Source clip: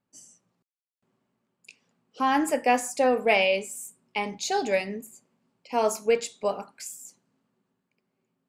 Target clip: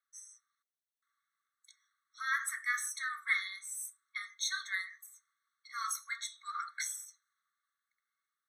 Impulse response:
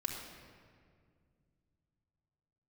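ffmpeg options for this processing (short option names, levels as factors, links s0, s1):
-filter_complex "[0:a]asplit=3[s0][s1][s2];[s0]afade=t=out:st=6.53:d=0.02[s3];[s1]equalizer=f=2300:t=o:w=2.9:g=14,afade=t=in:st=6.53:d=0.02,afade=t=out:st=7.04:d=0.02[s4];[s2]afade=t=in:st=7.04:d=0.02[s5];[s3][s4][s5]amix=inputs=3:normalize=0,afftfilt=real='re*eq(mod(floor(b*sr/1024/1100),2),1)':imag='im*eq(mod(floor(b*sr/1024/1100),2),1)':win_size=1024:overlap=0.75"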